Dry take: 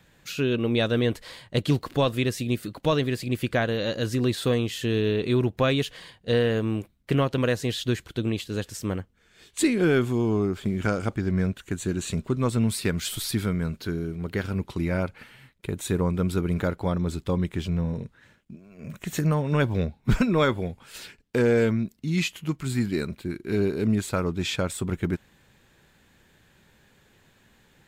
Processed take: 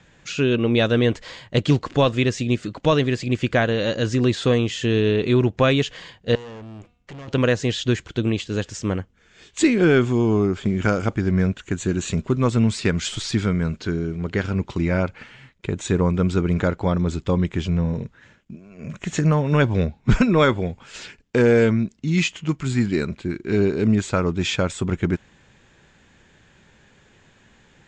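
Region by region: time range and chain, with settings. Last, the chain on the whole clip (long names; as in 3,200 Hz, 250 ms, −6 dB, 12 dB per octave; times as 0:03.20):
0:06.35–0:07.28: hum removal 241.7 Hz, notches 21 + downward compressor 2 to 1, threshold −38 dBFS + tube saturation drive 40 dB, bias 0.45
whole clip: elliptic low-pass filter 7,200 Hz, stop band 60 dB; parametric band 4,100 Hz −4 dB 0.43 octaves; level +6 dB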